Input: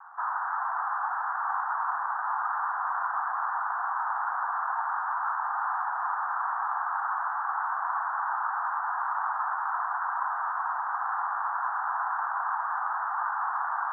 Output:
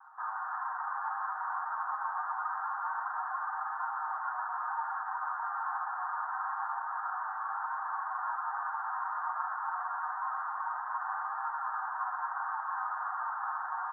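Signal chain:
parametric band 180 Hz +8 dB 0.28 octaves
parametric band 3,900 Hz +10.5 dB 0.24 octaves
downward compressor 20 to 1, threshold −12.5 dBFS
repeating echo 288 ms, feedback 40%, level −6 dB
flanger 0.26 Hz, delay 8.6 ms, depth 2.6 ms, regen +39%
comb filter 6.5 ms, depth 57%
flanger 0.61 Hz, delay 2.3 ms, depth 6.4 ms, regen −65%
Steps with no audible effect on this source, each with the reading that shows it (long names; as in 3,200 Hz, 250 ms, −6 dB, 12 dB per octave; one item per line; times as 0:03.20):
parametric band 180 Hz: nothing at its input below 600 Hz
parametric band 3,900 Hz: nothing at its input above 1,900 Hz
downward compressor, threshold −12.5 dBFS: peak of its input −16.5 dBFS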